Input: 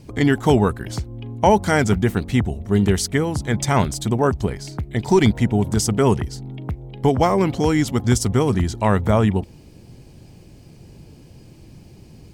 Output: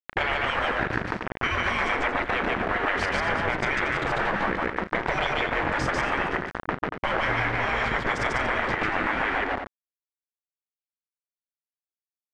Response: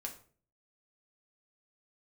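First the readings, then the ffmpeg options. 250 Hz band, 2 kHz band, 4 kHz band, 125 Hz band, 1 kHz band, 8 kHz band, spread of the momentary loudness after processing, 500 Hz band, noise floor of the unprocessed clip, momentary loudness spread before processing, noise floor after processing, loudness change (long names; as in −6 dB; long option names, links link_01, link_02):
−14.0 dB, +5.5 dB, −2.5 dB, −16.0 dB, −2.0 dB, −18.0 dB, 4 LU, −9.0 dB, −46 dBFS, 13 LU, below −85 dBFS, −6.0 dB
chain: -filter_complex "[0:a]aeval=exprs='val(0)*gte(abs(val(0)),0.0562)':channel_layout=same,lowpass=frequency=1800:width_type=q:width=2.1,afftfilt=real='re*lt(hypot(re,im),0.224)':imag='im*lt(hypot(re,im),0.224)':win_size=1024:overlap=0.75,asplit=2[link_01][link_02];[link_02]aecho=0:1:34.99|145.8|233.2:0.282|0.891|0.316[link_03];[link_01][link_03]amix=inputs=2:normalize=0,acompressor=threshold=-31dB:ratio=6,volume=9dB"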